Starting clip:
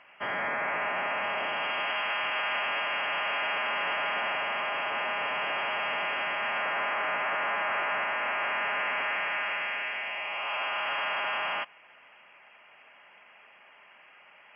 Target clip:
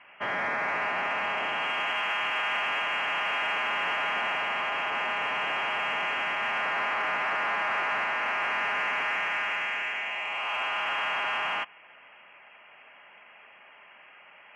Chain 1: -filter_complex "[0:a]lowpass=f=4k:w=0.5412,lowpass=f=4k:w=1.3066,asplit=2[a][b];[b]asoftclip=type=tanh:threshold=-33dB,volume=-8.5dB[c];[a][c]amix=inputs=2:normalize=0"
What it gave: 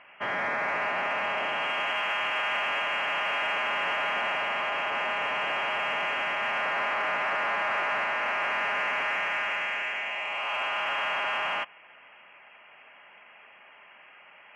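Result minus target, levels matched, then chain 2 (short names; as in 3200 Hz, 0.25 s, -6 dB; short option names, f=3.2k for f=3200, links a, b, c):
500 Hz band +2.5 dB
-filter_complex "[0:a]lowpass=f=4k:w=0.5412,lowpass=f=4k:w=1.3066,adynamicequalizer=threshold=0.00224:dfrequency=580:dqfactor=5.7:tfrequency=580:tqfactor=5.7:attack=5:release=100:ratio=0.45:range=3:mode=cutabove:tftype=bell,asplit=2[a][b];[b]asoftclip=type=tanh:threshold=-33dB,volume=-8.5dB[c];[a][c]amix=inputs=2:normalize=0"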